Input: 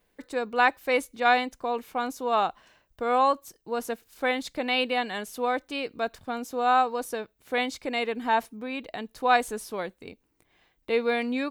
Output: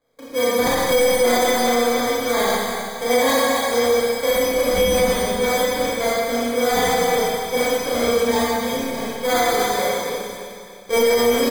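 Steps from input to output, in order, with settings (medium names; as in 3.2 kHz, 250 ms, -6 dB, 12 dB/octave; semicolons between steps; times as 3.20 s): comb filter that takes the minimum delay 0.37 ms; steep high-pass 160 Hz 96 dB/octave; bass shelf 240 Hz -6.5 dB; comb 4.3 ms, depth 43%; in parallel at -2.5 dB: level held to a coarse grid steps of 23 dB; on the sum: small resonant body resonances 540/1100 Hz, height 12 dB, ringing for 25 ms; sample-and-hold 16×; on a send: feedback delay 307 ms, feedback 45%, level -12.5 dB; on the sum: Schroeder reverb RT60 2.1 s, combs from 26 ms, DRR -9 dB; loudness maximiser +2.5 dB; trim -7.5 dB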